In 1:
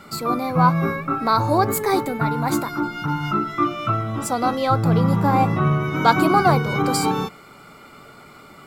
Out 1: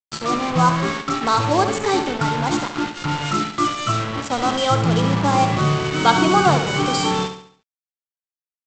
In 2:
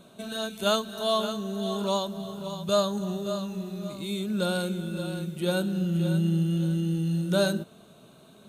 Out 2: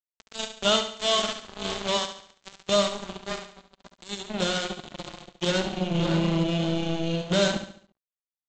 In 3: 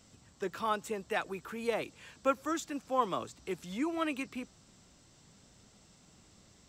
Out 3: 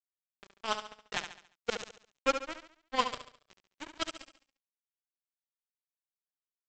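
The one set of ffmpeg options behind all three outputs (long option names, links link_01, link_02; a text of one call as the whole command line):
ffmpeg -i in.wav -af "equalizer=frequency=3100:width=6:gain=13.5,aresample=16000,acrusher=bits=3:mix=0:aa=0.5,aresample=44100,aecho=1:1:70|140|210|280|350:0.355|0.153|0.0656|0.0282|0.0121" out.wav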